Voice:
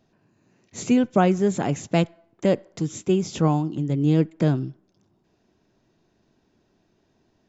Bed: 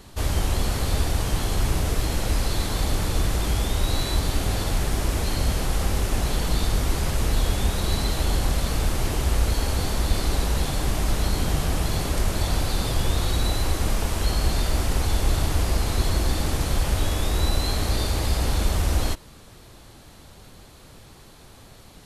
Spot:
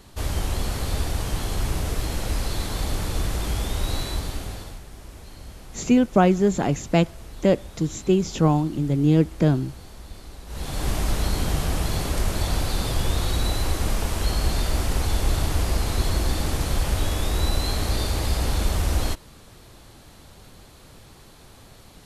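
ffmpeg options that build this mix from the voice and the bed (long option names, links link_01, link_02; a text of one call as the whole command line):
ffmpeg -i stem1.wav -i stem2.wav -filter_complex "[0:a]adelay=5000,volume=1.5dB[link_01];[1:a]volume=15dB,afade=type=out:start_time=3.94:duration=0.88:silence=0.16788,afade=type=in:start_time=10.46:duration=0.43:silence=0.133352[link_02];[link_01][link_02]amix=inputs=2:normalize=0" out.wav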